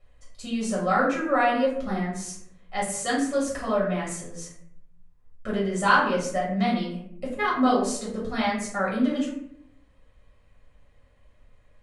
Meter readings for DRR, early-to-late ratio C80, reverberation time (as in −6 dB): −6.5 dB, 7.5 dB, 0.65 s